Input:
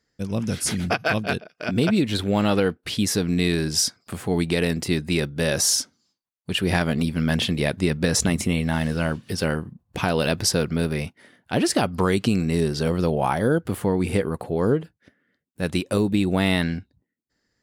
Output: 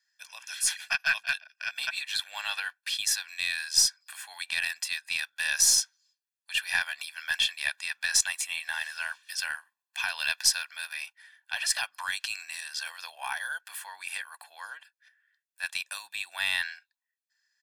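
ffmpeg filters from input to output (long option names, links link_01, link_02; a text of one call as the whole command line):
ffmpeg -i in.wav -af "highpass=frequency=1300:width=0.5412,highpass=frequency=1300:width=1.3066,aecho=1:1:1.2:0.84,aeval=exprs='0.531*(cos(1*acos(clip(val(0)/0.531,-1,1)))-cos(1*PI/2))+0.0168*(cos(4*acos(clip(val(0)/0.531,-1,1)))-cos(4*PI/2))':channel_layout=same,volume=-3dB" out.wav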